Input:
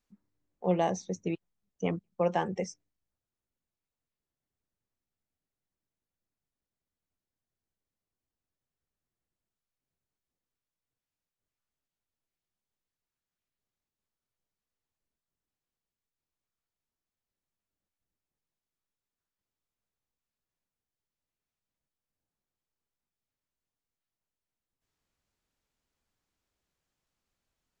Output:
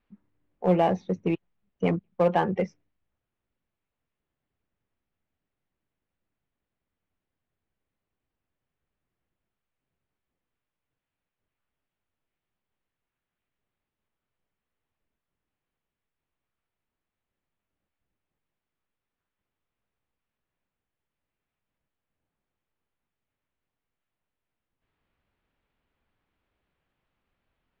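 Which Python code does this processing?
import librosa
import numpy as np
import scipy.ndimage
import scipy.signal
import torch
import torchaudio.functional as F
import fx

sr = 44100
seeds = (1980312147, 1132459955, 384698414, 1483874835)

p1 = scipy.signal.sosfilt(scipy.signal.butter(4, 3100.0, 'lowpass', fs=sr, output='sos'), x)
p2 = np.clip(p1, -10.0 ** (-28.5 / 20.0), 10.0 ** (-28.5 / 20.0))
p3 = p1 + (p2 * librosa.db_to_amplitude(-5.0))
y = p3 * librosa.db_to_amplitude(3.5)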